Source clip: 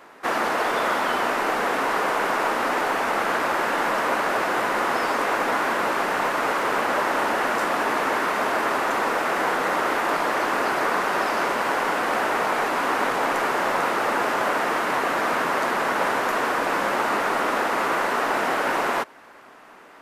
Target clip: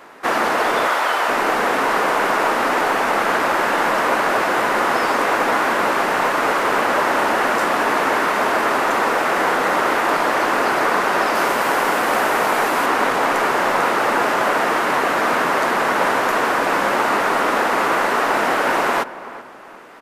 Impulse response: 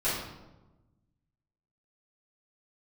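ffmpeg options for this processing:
-filter_complex "[0:a]asettb=1/sr,asplit=3[s0][s1][s2];[s0]atrim=end=0.874[s3];[s1]atrim=start=0.87:end=1.29,asetpts=PTS-STARTPTS,afade=t=in:d=0.004:c=qsin,afade=t=out:st=0.416:d=0.004:c=qsin,highpass=530[s4];[s2]atrim=start=1.286[s5];[s3][s4]acrossfade=d=0.004:c1=hsin:c2=qsin[s6];[s6][s5]acrossfade=d=0.004:c1=qsin:c2=hsin,asettb=1/sr,asplit=3[s7][s8][s9];[s7]atrim=end=11.354[s10];[s8]atrim=start=11.35:end=12.86,asetpts=PTS-STARTPTS,afade=t=in:d=0.004:c=qsin,afade=t=out:st=1.506:d=0.004:c=qsin,highshelf=f=9700:g=9[s11];[s9]atrim=start=12.856[s12];[s10][s11]acrossfade=d=0.004:c1=hsin:c2=qsin[s13];[s13][s12]acrossfade=d=0.004:c1=qsin:c2=hsin,asplit=2[s14][s15];[s15]adelay=382,lowpass=f=1800:p=1,volume=0.178,asplit=2[s16][s17];[s17]adelay=382,lowpass=f=1800:p=1,volume=0.4,asplit=2[s18][s19];[s19]adelay=382,lowpass=f=1800:p=1,volume=0.4,asplit=2[s20][s21];[s21]adelay=382,lowpass=f=1800:p=1,volume=0.4[s22];[s14][s16][s18][s20][s22]amix=inputs=5:normalize=0,volume=1.78"

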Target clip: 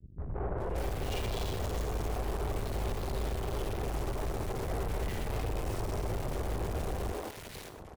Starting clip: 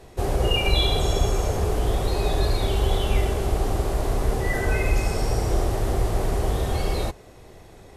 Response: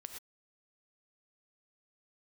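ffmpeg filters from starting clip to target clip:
-filter_complex "[0:a]highpass=f=59:p=1,tiltshelf=f=1200:g=8,acrusher=bits=5:mix=0:aa=0.5,aeval=exprs='(tanh(39.8*val(0)+0.3)-tanh(0.3))/39.8':c=same,acrossover=split=240|1600[s0][s1][s2];[s1]adelay=180[s3];[s2]adelay=580[s4];[s0][s3][s4]amix=inputs=3:normalize=0,asplit=2[s5][s6];[1:a]atrim=start_sample=2205,highshelf=f=7300:g=9[s7];[s6][s7]afir=irnorm=-1:irlink=0,volume=1.12[s8];[s5][s8]amix=inputs=2:normalize=0,volume=0.562"

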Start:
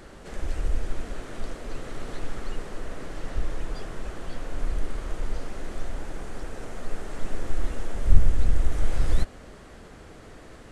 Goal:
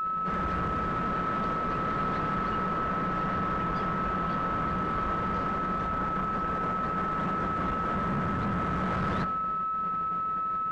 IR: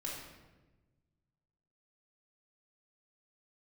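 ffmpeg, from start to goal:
-filter_complex "[0:a]asettb=1/sr,asplit=3[s0][s1][s2];[s0]atrim=end=5.554[s3];[s1]atrim=start=5.55:end=7.84,asetpts=PTS-STARTPTS,afade=t=in:d=0.004:c=qsin,afade=t=out:st=2.286:d=0.004:c=qsin,aeval=exprs='if(lt(val(0),0),0.708*val(0),val(0))':c=same[s4];[s2]atrim=start=7.836[s5];[s3][s4]acrossfade=d=0.004:c1=hsin:c2=qsin[s6];[s6][s5]acrossfade=d=0.004:c1=qsin:c2=hsin,lowpass=3000,equalizer=f=180:t=o:w=0.5:g=14,afftfilt=real='re*lt(hypot(re,im),0.562)':imag='im*lt(hypot(re,im),0.562)':win_size=1024:overlap=0.75,agate=range=0.0224:threshold=0.0158:ratio=3:detection=peak,aeval=exprs='val(0)+0.00891*sin(2*PI*1300*n/s)':c=same,highpass=52,aeval=exprs='(tanh(39.8*val(0)+0.2)-tanh(0.2))/39.8':c=same,acontrast=27,equalizer=f=1200:t=o:w=1.1:g=9.5"

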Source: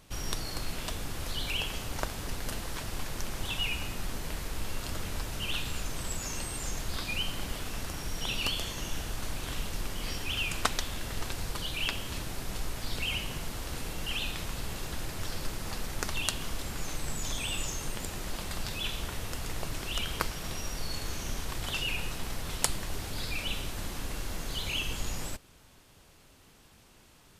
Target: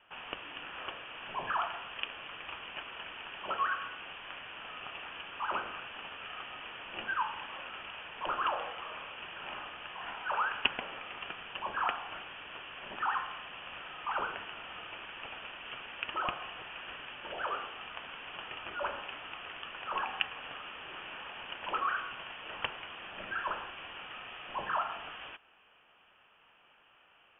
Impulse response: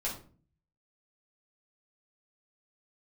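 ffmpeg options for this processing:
-af "highpass=f=1000:w=0.5412,highpass=f=1000:w=1.3066,equalizer=f=1900:t=o:w=0.23:g=-9.5,lowpass=f=3400:t=q:w=0.5098,lowpass=f=3400:t=q:w=0.6013,lowpass=f=3400:t=q:w=0.9,lowpass=f=3400:t=q:w=2.563,afreqshift=-4000,volume=1.41"

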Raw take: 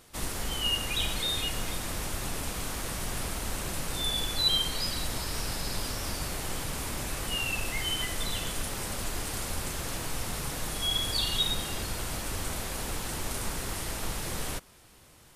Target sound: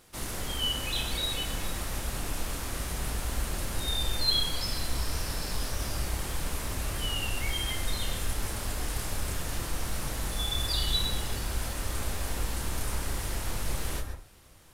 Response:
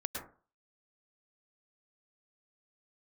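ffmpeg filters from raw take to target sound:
-filter_complex "[0:a]asplit=2[s0][s1];[s1]asubboost=boost=3:cutoff=100[s2];[1:a]atrim=start_sample=2205,adelay=30[s3];[s2][s3]afir=irnorm=-1:irlink=0,volume=0.531[s4];[s0][s4]amix=inputs=2:normalize=0,asetrate=45938,aresample=44100,volume=0.75"

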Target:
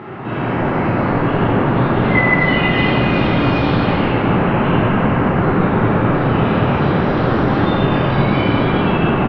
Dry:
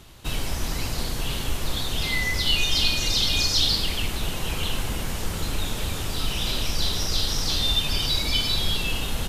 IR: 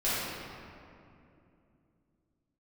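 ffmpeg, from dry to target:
-filter_complex "[0:a]lowpass=f=1800:w=0.5412,lowpass=f=1800:w=1.3066,acompressor=mode=upward:threshold=0.0316:ratio=2.5,highpass=f=130:w=0.5412,highpass=f=130:w=1.3066,asplit=8[s0][s1][s2][s3][s4][s5][s6][s7];[s1]adelay=137,afreqshift=-55,volume=0.237[s8];[s2]adelay=274,afreqshift=-110,volume=0.15[s9];[s3]adelay=411,afreqshift=-165,volume=0.0944[s10];[s4]adelay=548,afreqshift=-220,volume=0.0596[s11];[s5]adelay=685,afreqshift=-275,volume=0.0372[s12];[s6]adelay=822,afreqshift=-330,volume=0.0234[s13];[s7]adelay=959,afreqshift=-385,volume=0.0148[s14];[s0][s8][s9][s10][s11][s12][s13][s14]amix=inputs=8:normalize=0[s15];[1:a]atrim=start_sample=2205,asetrate=23814,aresample=44100[s16];[s15][s16]afir=irnorm=-1:irlink=0,volume=1.41"

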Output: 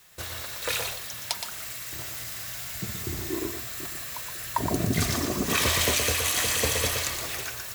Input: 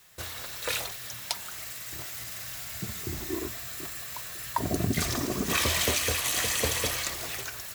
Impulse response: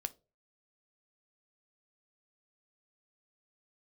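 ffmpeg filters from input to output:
-filter_complex "[0:a]asplit=2[s0][s1];[1:a]atrim=start_sample=2205,adelay=119[s2];[s1][s2]afir=irnorm=-1:irlink=0,volume=0.562[s3];[s0][s3]amix=inputs=2:normalize=0,volume=1.19"

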